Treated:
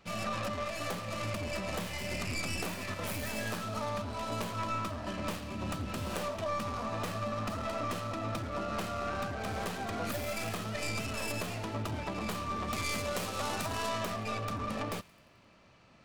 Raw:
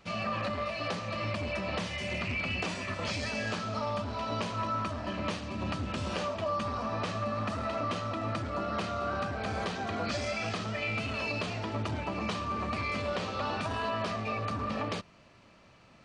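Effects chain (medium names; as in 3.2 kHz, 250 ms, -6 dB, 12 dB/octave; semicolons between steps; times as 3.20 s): tracing distortion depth 0.3 ms; 12.67–14.05 s: treble shelf 4.4 kHz +7.5 dB; on a send: feedback echo behind a high-pass 87 ms, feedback 62%, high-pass 1.6 kHz, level -20 dB; on the sum: trim -2.5 dB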